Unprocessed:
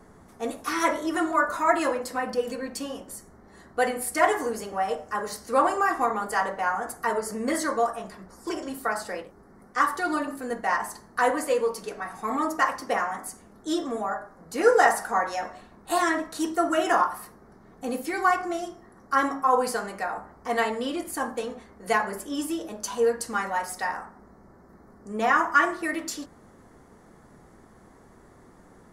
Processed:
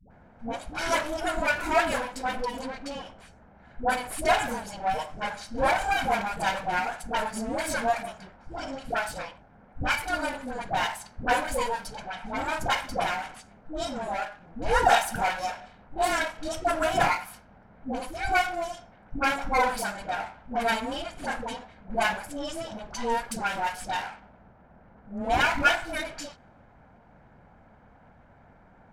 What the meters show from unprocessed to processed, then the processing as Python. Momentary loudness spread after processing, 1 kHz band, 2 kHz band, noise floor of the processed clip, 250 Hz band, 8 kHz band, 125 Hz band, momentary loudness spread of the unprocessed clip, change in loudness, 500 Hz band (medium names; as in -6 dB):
14 LU, -1.5 dB, 0.0 dB, -56 dBFS, -5.0 dB, -2.5 dB, no reading, 13 LU, -2.0 dB, -3.5 dB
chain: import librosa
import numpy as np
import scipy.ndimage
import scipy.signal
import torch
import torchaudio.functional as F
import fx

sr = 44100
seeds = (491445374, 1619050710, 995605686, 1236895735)

y = fx.lower_of_two(x, sr, delay_ms=1.3)
y = fx.env_lowpass(y, sr, base_hz=2000.0, full_db=-25.0)
y = fx.dispersion(y, sr, late='highs', ms=106.0, hz=510.0)